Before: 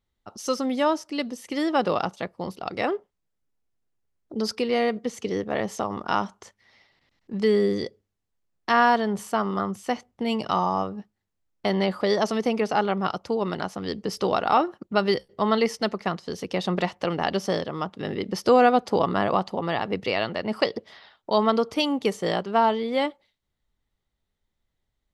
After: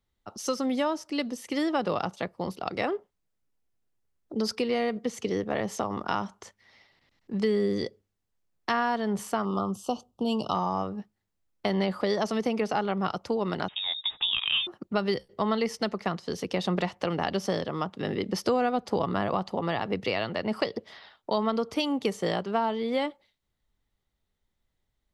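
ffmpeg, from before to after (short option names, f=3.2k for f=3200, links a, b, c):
-filter_complex "[0:a]asettb=1/sr,asplit=3[a][b][c];[a]atrim=end=9.454[d];[b]atrim=start=9.45:end=10.55,asetpts=PTS-STARTPTS,afade=t=in:d=0.004:c=qsin,afade=t=out:st=1.096:d=0.004:c=qsin,asuperstop=centerf=1900:order=8:qfactor=1.3[e];[c]atrim=start=10.546[f];[d][e]acrossfade=d=0.004:c1=hsin:c2=qsin[g];[g][f]acrossfade=d=0.004:c1=qsin:c2=hsin,asettb=1/sr,asplit=3[h][i][j];[h]atrim=end=13.684[k];[i]atrim=start=13.68:end=14.67,asetpts=PTS-STARTPTS,afade=t=in:d=0.004:c=qsin,afade=t=out:st=0.986:d=0.004:c=qsin,lowpass=f=3.3k:t=q:w=0.5098,lowpass=f=3.3k:t=q:w=0.6013,lowpass=f=3.3k:t=q:w=0.9,lowpass=f=3.3k:t=q:w=2.563,afreqshift=-3900[l];[j]atrim=start=14.666[m];[k][l]acrossfade=d=0.004:c1=hsin:c2=qsin[n];[n][m]acrossfade=d=0.004:c1=qsin:c2=hsin,acrossover=split=170[o][p];[p]acompressor=threshold=-25dB:ratio=3[q];[o][q]amix=inputs=2:normalize=0"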